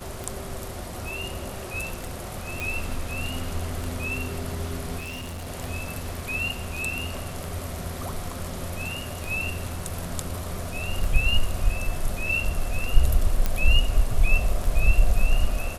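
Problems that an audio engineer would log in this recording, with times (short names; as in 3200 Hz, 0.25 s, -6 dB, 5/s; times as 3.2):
tick 33 1/3 rpm
2.6 pop
4.99–5.48 clipped -31.5 dBFS
13.46 pop -10 dBFS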